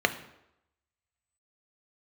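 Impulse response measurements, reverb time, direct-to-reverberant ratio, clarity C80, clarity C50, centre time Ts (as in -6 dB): 0.85 s, 8.0 dB, 16.0 dB, 13.5 dB, 7 ms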